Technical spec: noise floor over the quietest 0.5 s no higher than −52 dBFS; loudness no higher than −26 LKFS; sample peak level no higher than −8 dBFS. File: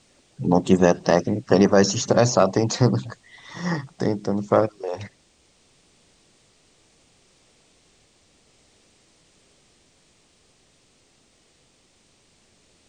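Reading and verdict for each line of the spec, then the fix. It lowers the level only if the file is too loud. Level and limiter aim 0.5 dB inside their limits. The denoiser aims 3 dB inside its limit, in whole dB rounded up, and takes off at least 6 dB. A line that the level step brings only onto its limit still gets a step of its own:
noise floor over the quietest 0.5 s −61 dBFS: in spec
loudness −21.0 LKFS: out of spec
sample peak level −3.5 dBFS: out of spec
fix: level −5.5 dB

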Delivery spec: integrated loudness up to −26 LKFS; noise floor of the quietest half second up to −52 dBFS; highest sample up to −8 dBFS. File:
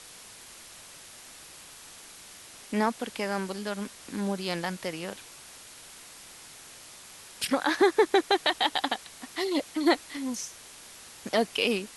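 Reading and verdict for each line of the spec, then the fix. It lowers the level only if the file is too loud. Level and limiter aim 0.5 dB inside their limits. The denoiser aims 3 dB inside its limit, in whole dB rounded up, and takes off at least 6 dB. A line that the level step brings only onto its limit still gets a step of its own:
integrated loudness −28.5 LKFS: in spec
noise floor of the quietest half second −48 dBFS: out of spec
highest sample −10.0 dBFS: in spec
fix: broadband denoise 7 dB, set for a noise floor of −48 dBFS

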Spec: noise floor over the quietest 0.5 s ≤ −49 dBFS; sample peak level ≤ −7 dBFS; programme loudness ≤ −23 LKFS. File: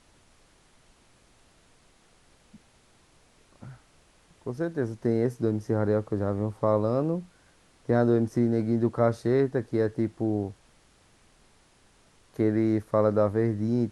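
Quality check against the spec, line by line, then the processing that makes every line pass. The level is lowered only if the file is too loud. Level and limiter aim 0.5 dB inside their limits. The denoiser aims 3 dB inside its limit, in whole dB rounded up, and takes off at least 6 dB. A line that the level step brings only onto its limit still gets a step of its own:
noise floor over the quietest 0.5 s −61 dBFS: in spec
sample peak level −9.0 dBFS: in spec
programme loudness −26.5 LKFS: in spec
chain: no processing needed

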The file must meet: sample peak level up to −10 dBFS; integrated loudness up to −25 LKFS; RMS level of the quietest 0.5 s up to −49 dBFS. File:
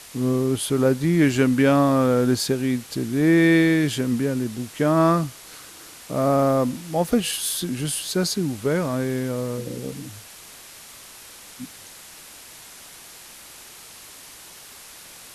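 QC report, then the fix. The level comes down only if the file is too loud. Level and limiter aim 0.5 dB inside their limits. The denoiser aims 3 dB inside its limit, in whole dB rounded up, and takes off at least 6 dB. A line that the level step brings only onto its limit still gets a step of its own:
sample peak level −7.5 dBFS: out of spec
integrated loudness −21.5 LKFS: out of spec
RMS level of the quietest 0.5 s −44 dBFS: out of spec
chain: broadband denoise 6 dB, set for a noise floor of −44 dBFS
level −4 dB

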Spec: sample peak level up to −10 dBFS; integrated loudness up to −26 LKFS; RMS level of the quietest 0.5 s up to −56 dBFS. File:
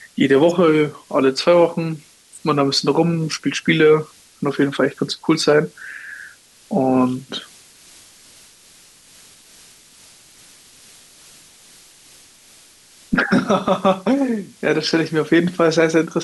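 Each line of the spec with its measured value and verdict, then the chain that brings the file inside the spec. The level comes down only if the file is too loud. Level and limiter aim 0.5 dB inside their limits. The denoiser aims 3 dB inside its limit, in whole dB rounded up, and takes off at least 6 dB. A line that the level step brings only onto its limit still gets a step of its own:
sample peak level −4.5 dBFS: out of spec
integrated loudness −18.0 LKFS: out of spec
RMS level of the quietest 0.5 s −48 dBFS: out of spec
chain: level −8.5 dB

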